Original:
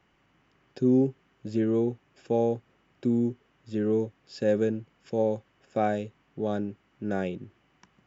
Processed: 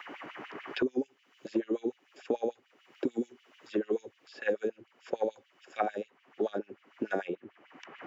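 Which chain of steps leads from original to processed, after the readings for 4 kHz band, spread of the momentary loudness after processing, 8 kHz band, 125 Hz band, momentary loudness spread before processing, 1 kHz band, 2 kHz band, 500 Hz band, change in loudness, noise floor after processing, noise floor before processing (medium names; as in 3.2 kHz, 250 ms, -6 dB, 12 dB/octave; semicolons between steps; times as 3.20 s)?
+1.0 dB, 17 LU, no reading, -20.5 dB, 12 LU, -3.5 dB, +2.0 dB, -5.5 dB, -6.5 dB, -69 dBFS, -68 dBFS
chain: LFO high-pass sine 6.8 Hz 280–3100 Hz; three bands compressed up and down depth 100%; trim -7 dB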